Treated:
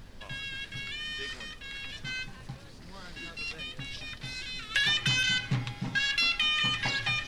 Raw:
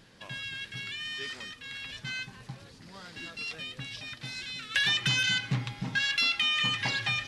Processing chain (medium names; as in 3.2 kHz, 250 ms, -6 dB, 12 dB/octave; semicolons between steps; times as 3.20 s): added noise brown -47 dBFS